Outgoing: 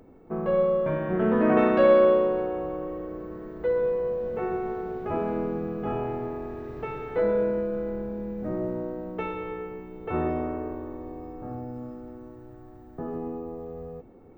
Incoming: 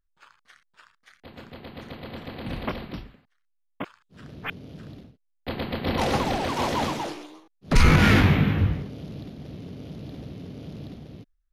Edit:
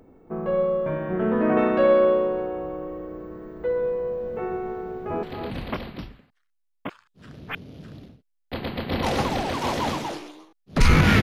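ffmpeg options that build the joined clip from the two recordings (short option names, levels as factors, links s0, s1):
-filter_complex "[0:a]apad=whole_dur=11.22,atrim=end=11.22,atrim=end=5.232[s0];[1:a]atrim=start=2.178:end=8.17[s1];[s0][s1]acrossfade=d=0.004:c1=hsin:c2=hsin,asplit=2[s2][s3];[s3]afade=t=in:st=4.81:d=0.01,afade=t=out:st=5.23:d=0.01,aecho=0:1:270|540:0.530884|0.0530884[s4];[s2][s4]amix=inputs=2:normalize=0"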